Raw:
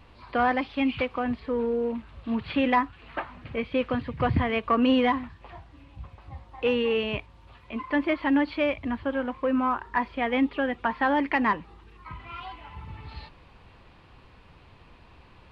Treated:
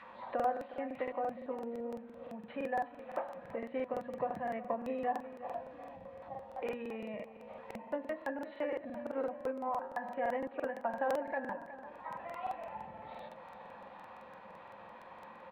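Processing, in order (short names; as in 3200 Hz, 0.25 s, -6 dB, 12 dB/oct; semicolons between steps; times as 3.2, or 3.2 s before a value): high shelf 2400 Hz +9.5 dB; de-hum 80.25 Hz, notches 24; small resonant body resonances 210/530/1900 Hz, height 16 dB, ringing for 75 ms; compressor 2.5:1, threshold -42 dBFS, peak gain reduction 21.5 dB; feedback echo 0.363 s, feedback 56%, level -14 dB; reverb RT60 0.60 s, pre-delay 6 ms, DRR 15.5 dB; formant shift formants -2 st; auto-wah 710–1700 Hz, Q 2.9, down, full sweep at -42 dBFS; crackling interface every 0.17 s, samples 2048, repeat, from 0.35; gain +8.5 dB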